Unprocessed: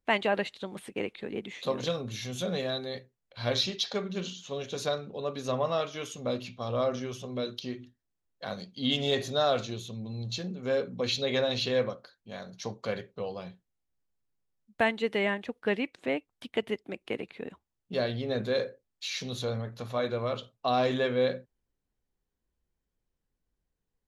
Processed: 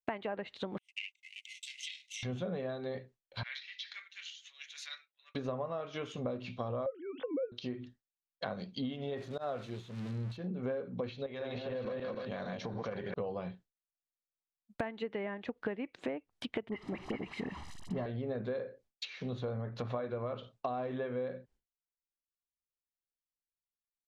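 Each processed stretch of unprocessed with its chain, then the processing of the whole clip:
0.78–2.23 minimum comb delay 0.33 ms + gate -45 dBFS, range -26 dB + rippled Chebyshev high-pass 2000 Hz, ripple 6 dB
3.43–5.35 transient shaper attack -7 dB, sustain -3 dB + ladder high-pass 1800 Hz, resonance 65%
6.86–7.52 sine-wave speech + small resonant body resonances 270/510/1500 Hz, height 9 dB, ringing for 50 ms
9.17–10.37 switching spikes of -24.5 dBFS + auto swell 0.124 s
11.26–13.14 regenerating reverse delay 0.148 s, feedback 40%, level -4 dB + compressor 5:1, threshold -37 dBFS
16.69–18.06 delta modulation 64 kbps, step -46 dBFS + comb 1 ms, depth 60% + dispersion highs, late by 42 ms, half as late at 1600 Hz
whole clip: expander -54 dBFS; compressor 16:1, threshold -37 dBFS; treble ducked by the level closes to 1600 Hz, closed at -37.5 dBFS; gain +4 dB

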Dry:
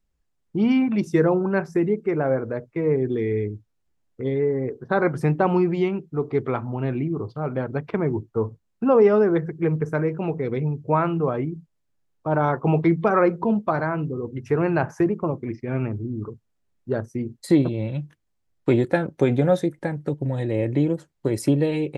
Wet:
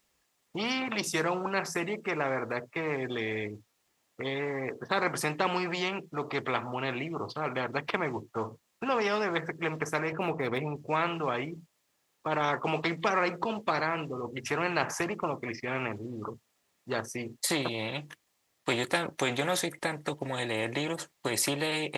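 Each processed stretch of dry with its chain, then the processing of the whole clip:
10.12–10.76 median filter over 5 samples + tilt shelf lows +6 dB, about 1300 Hz
whole clip: HPF 920 Hz 6 dB/oct; notch 1500 Hz, Q 11; spectral compressor 2:1

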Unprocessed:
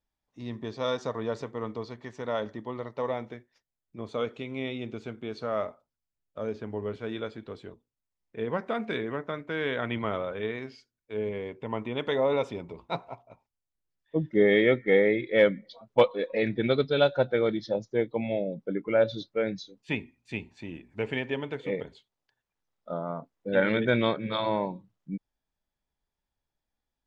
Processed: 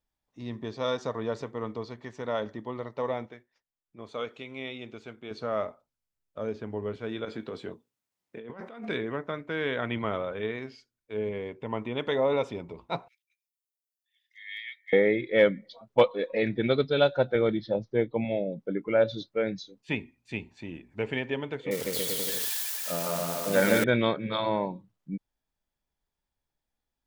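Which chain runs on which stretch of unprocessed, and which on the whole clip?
3.26–5.31 low shelf 480 Hz -9 dB + mismatched tape noise reduction decoder only
7.25–8.89 HPF 140 Hz + negative-ratio compressor -40 dBFS + doubler 22 ms -13 dB
13.08–14.93 steep high-pass 1700 Hz 72 dB/oct + differentiator
17.35–18.25 LPF 4200 Hz 24 dB/oct + low shelf 150 Hz +6 dB
21.71–23.84 switching spikes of -24 dBFS + bouncing-ball echo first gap 0.15 s, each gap 0.85×, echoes 6, each echo -2 dB
whole clip: dry

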